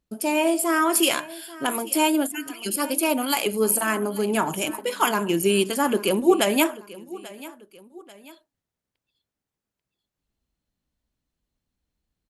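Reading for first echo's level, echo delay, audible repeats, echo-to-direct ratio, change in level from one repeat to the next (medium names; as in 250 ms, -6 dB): -19.0 dB, 839 ms, 2, -18.5 dB, -7.5 dB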